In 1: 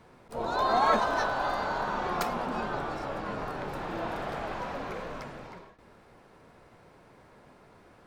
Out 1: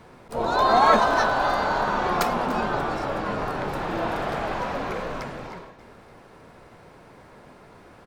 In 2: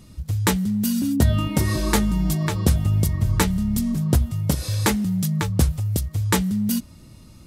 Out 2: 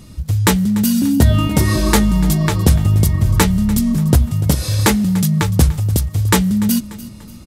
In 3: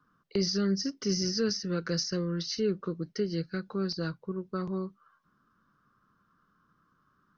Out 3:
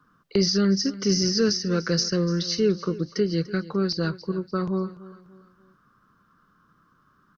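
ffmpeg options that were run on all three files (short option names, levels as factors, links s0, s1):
-af "aecho=1:1:293|586|879:0.133|0.0533|0.0213,acontrast=43,volume=1.19"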